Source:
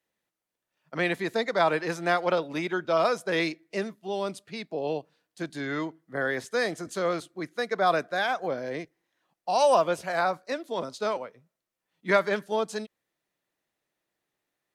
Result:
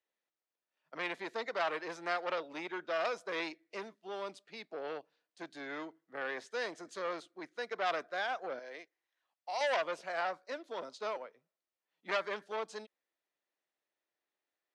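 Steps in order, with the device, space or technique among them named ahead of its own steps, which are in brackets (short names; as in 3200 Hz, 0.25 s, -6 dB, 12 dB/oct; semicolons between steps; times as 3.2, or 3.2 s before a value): 8.59–9.61 HPF 910 Hz 6 dB/oct; public-address speaker with an overloaded transformer (core saturation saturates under 2100 Hz; BPF 340–6000 Hz); gain -7.5 dB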